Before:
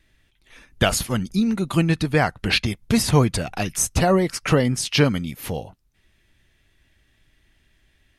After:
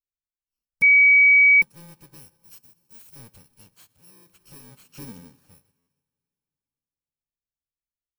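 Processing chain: FFT order left unsorted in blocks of 64 samples; 2.43–3.16 pre-emphasis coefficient 0.8; plate-style reverb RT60 4.2 s, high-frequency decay 0.95×, DRR 13 dB; overloaded stage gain 21.5 dB; 3.75–4.29 HPF 67 Hz 12 dB/oct; limiter -25.5 dBFS, peak gain reduction 11 dB; 0.82–1.62 bleep 2270 Hz -11.5 dBFS; 4.97–5.48 bell 260 Hz +8 dB 1.3 oct; stuck buffer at 5.78, samples 512, times 7; upward expander 2.5:1, over -44 dBFS; gain +1 dB

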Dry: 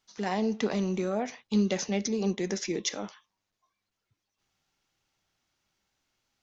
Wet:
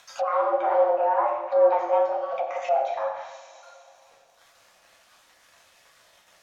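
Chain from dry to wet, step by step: random spectral dropouts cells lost 28%; steep high-pass 180 Hz 36 dB/oct; high shelf 2300 Hz -8 dB; in parallel at +0.5 dB: upward compressor, threshold -32 dBFS; on the sum: hard clip -20.5 dBFS, distortion -11 dB; frequency shift +340 Hz; crossover distortion -54.5 dBFS; two-slope reverb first 0.85 s, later 3.3 s, from -19 dB, DRR -4 dB; treble ducked by the level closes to 1200 Hz, closed at -23.5 dBFS

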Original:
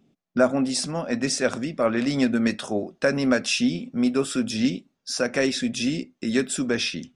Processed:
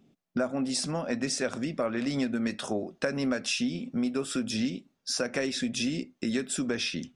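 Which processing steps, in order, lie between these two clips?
compressor 4:1, threshold -27 dBFS, peak gain reduction 11.5 dB

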